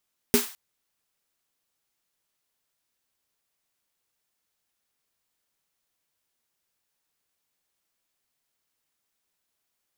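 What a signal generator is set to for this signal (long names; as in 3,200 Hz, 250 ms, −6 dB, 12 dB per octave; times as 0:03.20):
synth snare length 0.21 s, tones 240 Hz, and 410 Hz, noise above 830 Hz, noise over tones −5 dB, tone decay 0.16 s, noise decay 0.42 s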